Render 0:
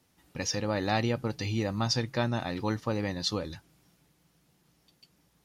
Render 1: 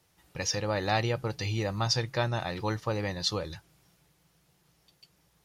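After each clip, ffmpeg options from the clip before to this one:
-af "equalizer=f=250:w=3.2:g=-13.5,volume=1.19"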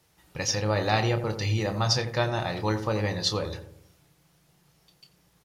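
-filter_complex "[0:a]asplit=2[s0][s1];[s1]adelay=28,volume=0.355[s2];[s0][s2]amix=inputs=2:normalize=0,asplit=2[s3][s4];[s4]adelay=87,lowpass=f=900:p=1,volume=0.422,asplit=2[s5][s6];[s6]adelay=87,lowpass=f=900:p=1,volume=0.52,asplit=2[s7][s8];[s8]adelay=87,lowpass=f=900:p=1,volume=0.52,asplit=2[s9][s10];[s10]adelay=87,lowpass=f=900:p=1,volume=0.52,asplit=2[s11][s12];[s12]adelay=87,lowpass=f=900:p=1,volume=0.52,asplit=2[s13][s14];[s14]adelay=87,lowpass=f=900:p=1,volume=0.52[s15];[s3][s5][s7][s9][s11][s13][s15]amix=inputs=7:normalize=0,volume=1.33"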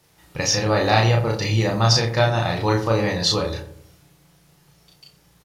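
-filter_complex "[0:a]asplit=2[s0][s1];[s1]adelay=35,volume=0.794[s2];[s0][s2]amix=inputs=2:normalize=0,volume=1.78"

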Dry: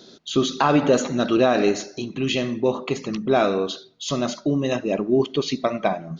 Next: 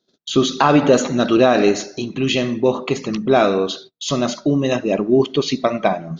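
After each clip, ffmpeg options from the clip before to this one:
-af "agate=range=0.0282:threshold=0.00708:ratio=16:detection=peak,volume=1.68"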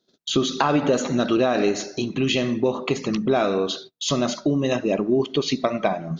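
-af "acompressor=threshold=0.112:ratio=2.5"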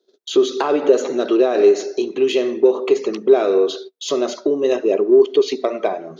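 -filter_complex "[0:a]asplit=2[s0][s1];[s1]asoftclip=type=tanh:threshold=0.126,volume=0.501[s2];[s0][s2]amix=inputs=2:normalize=0,highpass=f=400:t=q:w=5,volume=0.562"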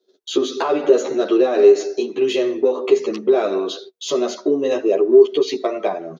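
-filter_complex "[0:a]asplit=2[s0][s1];[s1]adelay=10.7,afreqshift=-0.92[s2];[s0][s2]amix=inputs=2:normalize=1,volume=1.33"

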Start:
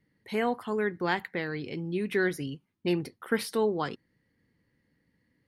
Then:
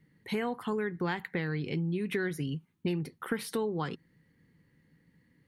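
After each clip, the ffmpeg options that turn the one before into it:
-af "equalizer=f=160:t=o:w=0.33:g=9,equalizer=f=630:t=o:w=0.33:g=-6,equalizer=f=5000:t=o:w=0.33:g=-5,acompressor=threshold=0.0224:ratio=6,volume=1.58"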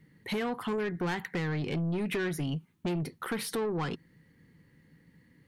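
-af "aeval=exprs='(tanh(39.8*val(0)+0.05)-tanh(0.05))/39.8':c=same,volume=1.78"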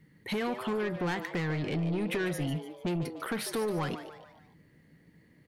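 -filter_complex "[0:a]asplit=5[s0][s1][s2][s3][s4];[s1]adelay=147,afreqshift=150,volume=0.266[s5];[s2]adelay=294,afreqshift=300,volume=0.117[s6];[s3]adelay=441,afreqshift=450,volume=0.0513[s7];[s4]adelay=588,afreqshift=600,volume=0.0226[s8];[s0][s5][s6][s7][s8]amix=inputs=5:normalize=0"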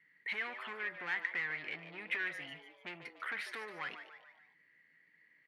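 -af "bandpass=f=2000:t=q:w=3.2:csg=0,volume=1.68"

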